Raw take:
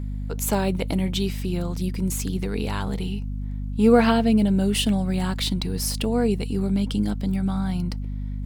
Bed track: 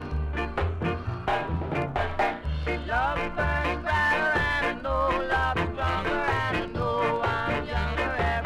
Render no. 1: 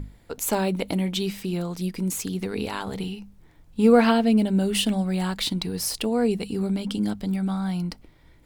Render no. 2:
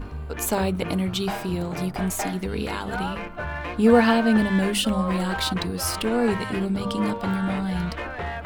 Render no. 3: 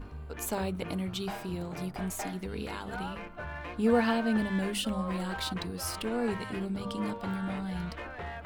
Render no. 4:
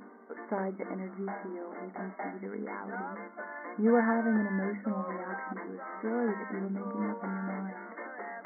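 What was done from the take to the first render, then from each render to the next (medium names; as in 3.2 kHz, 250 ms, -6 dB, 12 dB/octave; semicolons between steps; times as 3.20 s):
hum notches 50/100/150/200/250 Hz
add bed track -5 dB
trim -9 dB
FFT band-pass 190–2200 Hz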